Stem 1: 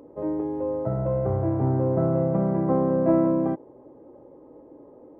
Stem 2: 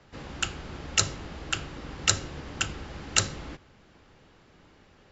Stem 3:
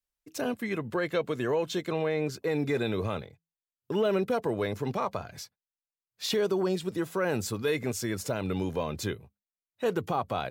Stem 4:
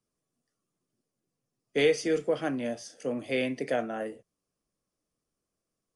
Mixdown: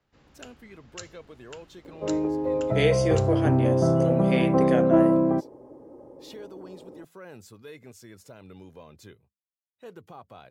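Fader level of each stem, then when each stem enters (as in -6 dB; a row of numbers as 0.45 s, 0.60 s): +1.5 dB, -18.0 dB, -16.0 dB, +1.0 dB; 1.85 s, 0.00 s, 0.00 s, 1.00 s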